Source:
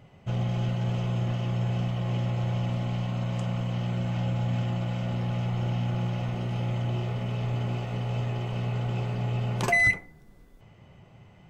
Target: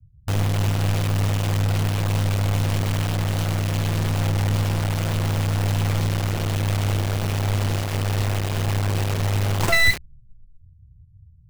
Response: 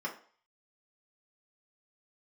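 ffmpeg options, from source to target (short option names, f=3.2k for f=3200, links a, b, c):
-filter_complex "[0:a]afreqshift=-20,acrossover=split=110[a][b];[b]acrusher=bits=3:dc=4:mix=0:aa=0.000001[c];[a][c]amix=inputs=2:normalize=0,volume=8.5dB"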